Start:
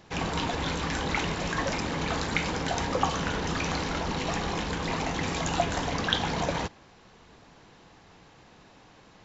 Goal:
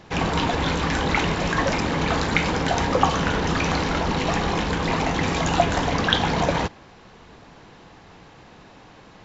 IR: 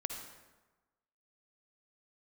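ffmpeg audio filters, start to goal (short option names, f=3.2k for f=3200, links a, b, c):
-af "highshelf=f=5.5k:g=-7.5,volume=7.5dB"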